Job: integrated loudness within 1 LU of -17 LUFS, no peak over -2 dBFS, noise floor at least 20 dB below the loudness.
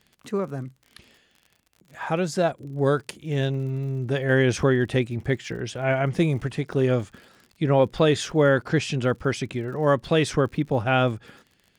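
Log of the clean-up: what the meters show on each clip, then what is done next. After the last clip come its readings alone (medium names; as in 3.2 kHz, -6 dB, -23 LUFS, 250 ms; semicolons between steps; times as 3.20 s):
tick rate 50 per s; loudness -24.0 LUFS; peak level -7.5 dBFS; loudness target -17.0 LUFS
-> de-click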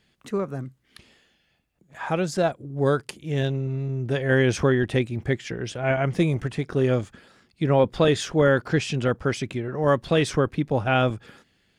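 tick rate 0.17 per s; loudness -24.0 LUFS; peak level -7.5 dBFS; loudness target -17.0 LUFS
-> trim +7 dB; peak limiter -2 dBFS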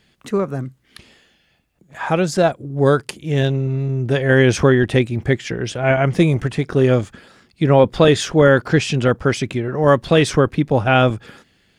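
loudness -17.0 LUFS; peak level -2.0 dBFS; noise floor -60 dBFS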